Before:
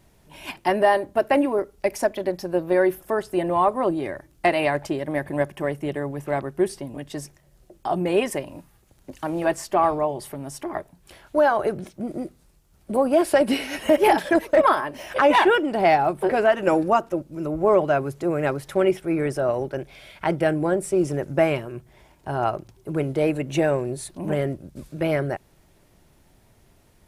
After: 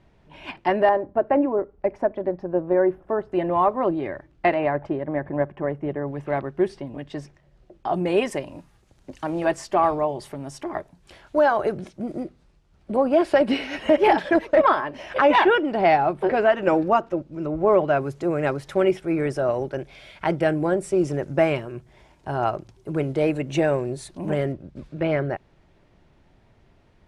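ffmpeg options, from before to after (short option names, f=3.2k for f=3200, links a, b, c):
-af "asetnsamples=n=441:p=0,asendcmd='0.89 lowpass f 1200;3.32 lowpass f 2800;4.54 lowpass f 1500;6.08 lowpass f 3500;7.94 lowpass f 6800;12.23 lowpass f 4100;17.97 lowpass f 7200;24.52 lowpass f 3400',lowpass=3.1k"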